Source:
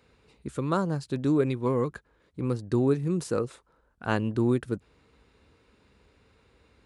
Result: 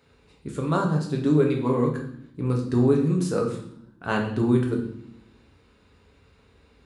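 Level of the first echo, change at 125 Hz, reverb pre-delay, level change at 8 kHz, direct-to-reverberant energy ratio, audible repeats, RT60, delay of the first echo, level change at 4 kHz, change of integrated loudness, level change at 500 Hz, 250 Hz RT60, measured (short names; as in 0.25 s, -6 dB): none, +5.0 dB, 5 ms, +2.5 dB, 0.0 dB, none, 0.70 s, none, +3.5 dB, +4.5 dB, +3.5 dB, 1.1 s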